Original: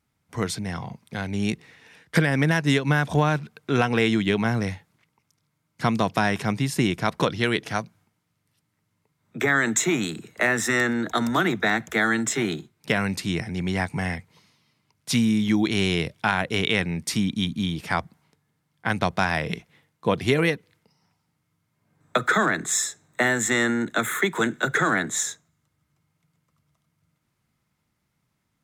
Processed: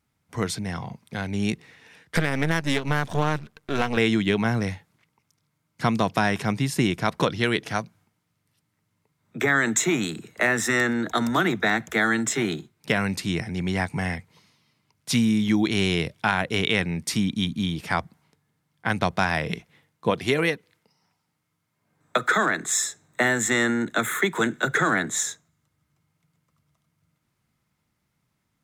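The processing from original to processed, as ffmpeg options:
ffmpeg -i in.wav -filter_complex "[0:a]asettb=1/sr,asplit=3[link_01][link_02][link_03];[link_01]atrim=end=2.164[link_04];[link_02]atrim=start=2.16:end=3.97,asetpts=PTS-STARTPTS,afade=type=in:duration=0.004:curve=qsin,afade=type=out:start_time=1.806:duration=0.004:curve=qsin,aeval=exprs='if(lt(val(0),0),0.251*val(0),val(0))':channel_layout=same[link_05];[link_03]atrim=start=3.966[link_06];[link_04][link_05]acrossfade=duration=0.004:curve1=hsin:curve2=qsin[link_07];[link_07][link_06]acrossfade=duration=0.004:curve1=qsin:curve2=hsin,asettb=1/sr,asplit=3[link_08][link_09][link_10];[link_08]atrim=end=20.104[link_11];[link_09]atrim=start=20.1:end=22.82,asetpts=PTS-STARTPTS,afade=type=in:duration=0.004:curve=qsin,afade=type=out:start_time=2.716:duration=0.004:curve=qsin,lowshelf=frequency=190:gain=-8[link_12];[link_10]atrim=start=22.816[link_13];[link_11][link_12]acrossfade=duration=0.004:curve1=hsin:curve2=qsin[link_14];[link_14][link_13]acrossfade=duration=0.004:curve1=qsin:curve2=hsin" out.wav

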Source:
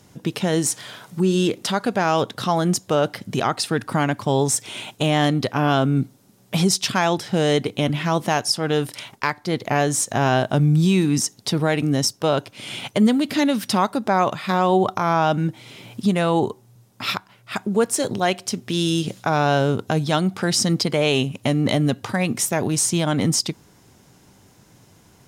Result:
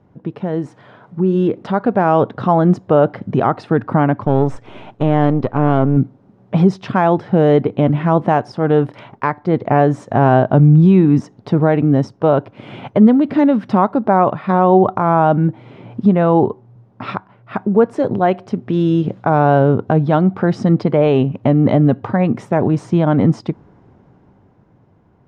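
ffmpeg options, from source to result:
ffmpeg -i in.wav -filter_complex "[0:a]asettb=1/sr,asplit=3[link_01][link_02][link_03];[link_01]atrim=end=4.244[link_04];[link_02]atrim=start=4.24:end=5.97,asetpts=PTS-STARTPTS,afade=type=in:duration=0.004:curve=qsin,afade=type=out:start_time=1.726:duration=0.004:curve=qsin,aeval=exprs='if(lt(val(0),0),0.447*val(0),val(0))':channel_layout=same[link_05];[link_03]atrim=start=5.966[link_06];[link_04][link_05]acrossfade=duration=0.004:curve1=hsin:curve2=qsin[link_07];[link_07][link_06]acrossfade=duration=0.004:curve1=qsin:curve2=hsin,lowpass=1100,dynaudnorm=framelen=140:gausssize=21:maxgain=11.5dB" out.wav

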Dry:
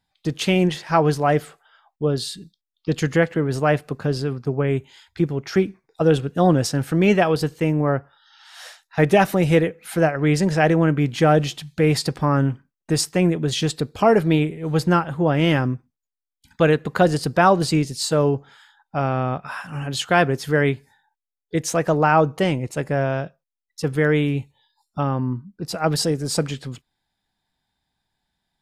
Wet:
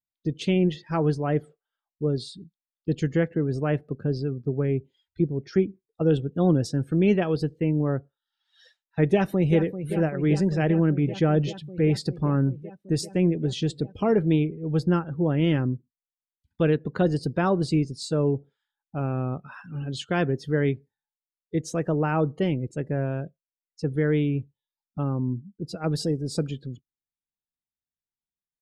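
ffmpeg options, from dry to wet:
ffmpeg -i in.wav -filter_complex "[0:a]asplit=2[link_01][link_02];[link_02]afade=type=in:start_time=9.05:duration=0.01,afade=type=out:start_time=9.57:duration=0.01,aecho=0:1:390|780|1170|1560|1950|2340|2730|3120|3510|3900|4290|4680:0.281838|0.239563|0.203628|0.173084|0.147121|0.125053|0.106295|0.0903509|0.0767983|0.0652785|0.0554867|0.0471637[link_03];[link_01][link_03]amix=inputs=2:normalize=0,firequalizer=gain_entry='entry(380,0);entry(700,-9);entry(3500,-1)':delay=0.05:min_phase=1,afftdn=noise_reduction=22:noise_floor=-40,highshelf=frequency=4000:gain=-10,volume=-3dB" out.wav

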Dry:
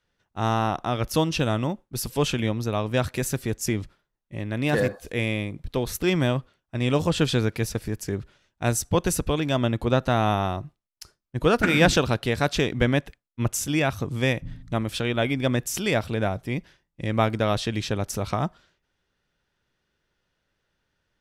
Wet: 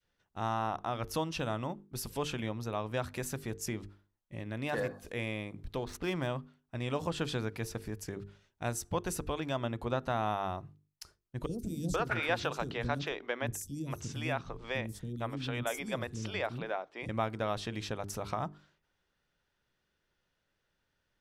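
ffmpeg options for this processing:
ffmpeg -i in.wav -filter_complex "[0:a]asettb=1/sr,asplit=3[link_01][link_02][link_03];[link_01]atrim=end=5.774[link_04];[link_02]atrim=start=5.77:end=6.27,asetpts=PTS-STARTPTS,afade=type=in:duration=0.004:curve=qsin,afade=type=out:start_time=0.496:duration=0.004:curve=qsin,adynamicsmooth=sensitivity=8:basefreq=2900[link_05];[link_03]atrim=start=6.266[link_06];[link_04][link_05]acrossfade=duration=0.004:curve1=hsin:curve2=qsin[link_07];[link_07][link_06]acrossfade=duration=0.004:curve1=qsin:curve2=hsin,asettb=1/sr,asplit=3[link_08][link_09][link_10];[link_08]atrim=end=11.464[link_11];[link_09]atrim=start=11.46:end=17.09,asetpts=PTS-STARTPTS,afade=type=in:duration=0.004:curve=qsin,afade=type=out:start_time=5.626:duration=0.004:curve=qsin,acrossover=split=330|5800[link_12][link_13][link_14];[link_12]adelay=30[link_15];[link_13]adelay=480[link_16];[link_15][link_16][link_14]amix=inputs=3:normalize=0,atrim=end_sample=248283[link_17];[link_10]atrim=start=17.086[link_18];[link_11][link_17]acrossfade=duration=0.004:curve1=hsin:curve2=qsin[link_19];[link_19][link_18]acrossfade=duration=0.004:curve1=qsin:curve2=hsin,bandreject=frequency=50:width_type=h:width=6,bandreject=frequency=100:width_type=h:width=6,bandreject=frequency=150:width_type=h:width=6,bandreject=frequency=200:width_type=h:width=6,bandreject=frequency=250:width_type=h:width=6,bandreject=frequency=300:width_type=h:width=6,bandreject=frequency=350:width_type=h:width=6,bandreject=frequency=400:width_type=h:width=6,bandreject=frequency=450:width_type=h:width=6,adynamicequalizer=threshold=0.0158:dfrequency=980:dqfactor=0.87:tfrequency=980:tqfactor=0.87:attack=5:release=100:ratio=0.375:range=3:mode=boostabove:tftype=bell,acompressor=threshold=-40dB:ratio=1.5,volume=-4.5dB" out.wav

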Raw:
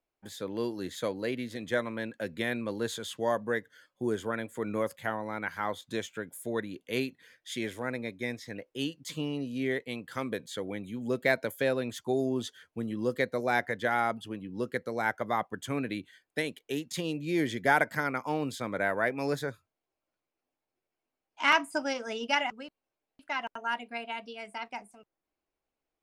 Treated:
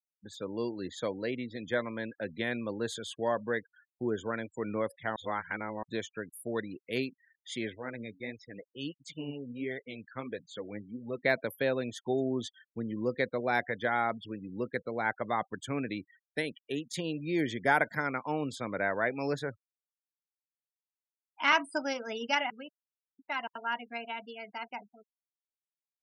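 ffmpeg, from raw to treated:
ffmpeg -i in.wav -filter_complex "[0:a]asettb=1/sr,asplit=3[link_01][link_02][link_03];[link_01]atrim=end=7.754[link_04];[link_02]atrim=start=7.75:end=11.24,asetpts=PTS-STARTPTS,afade=type=in:duration=0.004:curve=qsin,afade=type=out:start_time=3.486:duration=0.004:curve=qsin,flanger=delay=1.3:depth=8.2:regen=45:speed=1.5:shape=sinusoidal[link_05];[link_03]atrim=start=11.236[link_06];[link_04][link_05]acrossfade=duration=0.004:curve1=hsin:curve2=qsin[link_07];[link_07][link_06]acrossfade=duration=0.004:curve1=qsin:curve2=hsin,asplit=3[link_08][link_09][link_10];[link_08]atrim=end=5.162[link_11];[link_09]atrim=start=5.158:end=5.832,asetpts=PTS-STARTPTS,areverse[link_12];[link_10]atrim=start=5.828[link_13];[link_11][link_12]acrossfade=duration=0.004:curve1=hsin:curve2=hsin[link_14];[link_14][link_13]acrossfade=duration=0.004:curve1=hsin:curve2=hsin,afftfilt=real='re*gte(hypot(re,im),0.00708)':imag='im*gte(hypot(re,im),0.00708)':win_size=1024:overlap=0.75,volume=-1.5dB" out.wav

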